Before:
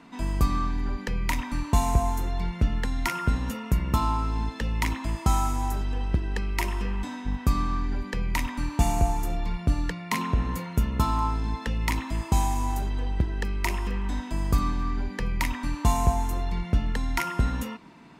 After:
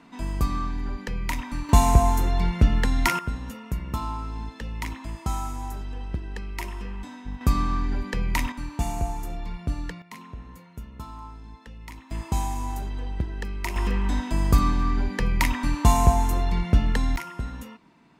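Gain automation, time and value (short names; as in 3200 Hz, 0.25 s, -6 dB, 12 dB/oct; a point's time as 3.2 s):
-1.5 dB
from 1.69 s +5.5 dB
from 3.19 s -5.5 dB
from 7.41 s +2 dB
from 8.52 s -4.5 dB
from 10.02 s -15 dB
from 12.11 s -3 dB
from 13.76 s +4.5 dB
from 17.16 s -7.5 dB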